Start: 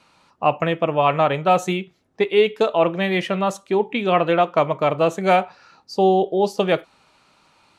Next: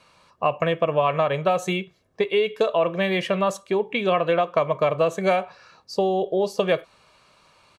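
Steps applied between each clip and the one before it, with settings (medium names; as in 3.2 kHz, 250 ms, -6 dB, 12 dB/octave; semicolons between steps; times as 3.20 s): compression, threshold -18 dBFS, peak gain reduction 7.5 dB; comb 1.8 ms, depth 46%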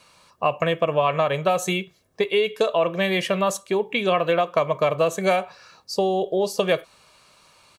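treble shelf 5.6 kHz +12 dB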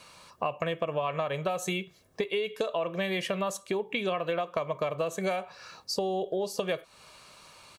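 compression 3:1, threshold -33 dBFS, peak gain reduction 13.5 dB; trim +2 dB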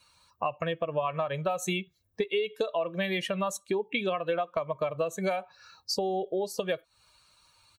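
expander on every frequency bin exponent 1.5; trim +3 dB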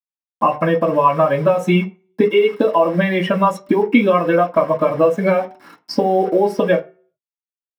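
word length cut 8-bit, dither none; reverberation RT60 0.35 s, pre-delay 3 ms, DRR -7.5 dB; trim -1 dB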